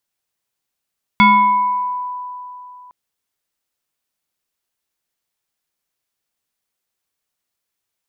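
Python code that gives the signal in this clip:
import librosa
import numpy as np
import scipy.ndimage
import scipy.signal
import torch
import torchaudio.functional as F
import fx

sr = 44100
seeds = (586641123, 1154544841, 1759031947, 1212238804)

y = fx.fm2(sr, length_s=1.71, level_db=-5.5, carrier_hz=993.0, ratio=1.21, index=1.3, index_s=1.21, decay_s=3.06, shape='exponential')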